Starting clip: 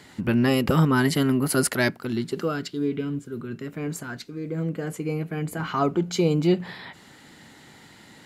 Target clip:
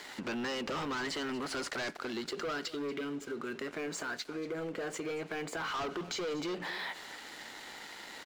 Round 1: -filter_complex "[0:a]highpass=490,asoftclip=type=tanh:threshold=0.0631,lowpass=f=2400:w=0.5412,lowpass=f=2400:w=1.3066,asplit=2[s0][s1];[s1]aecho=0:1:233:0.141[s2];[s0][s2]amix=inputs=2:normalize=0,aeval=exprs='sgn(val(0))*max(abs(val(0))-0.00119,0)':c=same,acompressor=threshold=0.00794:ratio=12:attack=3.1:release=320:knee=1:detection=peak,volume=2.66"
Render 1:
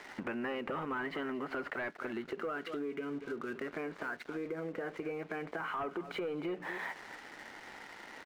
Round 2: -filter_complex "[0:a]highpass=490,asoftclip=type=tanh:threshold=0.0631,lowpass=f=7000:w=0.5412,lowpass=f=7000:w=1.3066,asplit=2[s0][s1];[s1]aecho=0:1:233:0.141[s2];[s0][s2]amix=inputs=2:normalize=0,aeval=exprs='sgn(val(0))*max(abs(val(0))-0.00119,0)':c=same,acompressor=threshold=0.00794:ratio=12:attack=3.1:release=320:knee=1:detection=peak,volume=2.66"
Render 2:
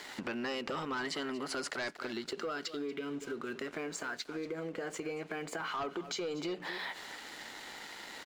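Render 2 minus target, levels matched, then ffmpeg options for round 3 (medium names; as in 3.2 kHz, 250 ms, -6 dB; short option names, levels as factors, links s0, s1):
saturation: distortion -7 dB
-filter_complex "[0:a]highpass=490,asoftclip=type=tanh:threshold=0.0178,lowpass=f=7000:w=0.5412,lowpass=f=7000:w=1.3066,asplit=2[s0][s1];[s1]aecho=0:1:233:0.141[s2];[s0][s2]amix=inputs=2:normalize=0,aeval=exprs='sgn(val(0))*max(abs(val(0))-0.00119,0)':c=same,acompressor=threshold=0.00794:ratio=12:attack=3.1:release=320:knee=1:detection=peak,volume=2.66"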